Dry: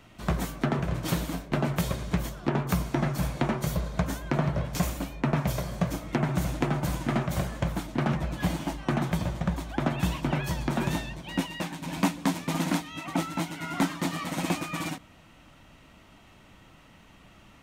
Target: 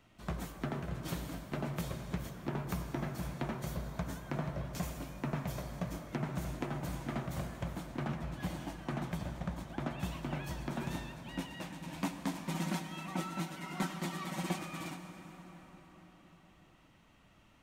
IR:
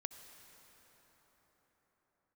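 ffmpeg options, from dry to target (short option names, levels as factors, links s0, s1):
-filter_complex "[0:a]asettb=1/sr,asplit=3[s0][s1][s2];[s0]atrim=end=12.464[s3];[s1]atrim=start=12.46:end=14.59,asetpts=PTS-STARTPTS,afade=t=in:d=0.004:c=qsin,afade=t=out:st=2.126:d=0.004:c=qsin,aecho=1:1:5.3:0.83,atrim=end_sample=93933[s4];[s2]atrim=start=14.586[s5];[s3][s4]acrossfade=d=0.004:c1=hsin:c2=qsin[s6];[s6][s5]acrossfade=d=0.004:c1=qsin:c2=hsin[s7];[1:a]atrim=start_sample=2205[s8];[s7][s8]afir=irnorm=-1:irlink=0,volume=0.422"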